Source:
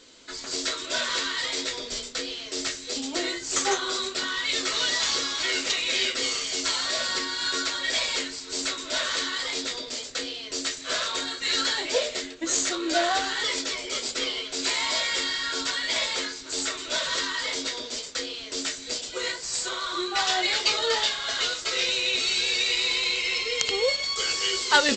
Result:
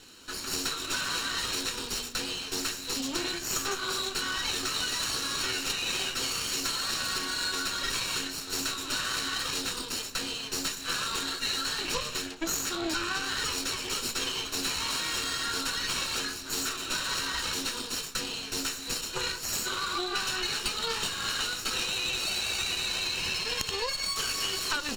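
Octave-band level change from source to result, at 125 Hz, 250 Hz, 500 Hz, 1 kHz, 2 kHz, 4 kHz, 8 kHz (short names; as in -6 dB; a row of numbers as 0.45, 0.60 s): +7.5, -2.5, -8.0, -4.5, -5.0, -4.5, -2.5 dB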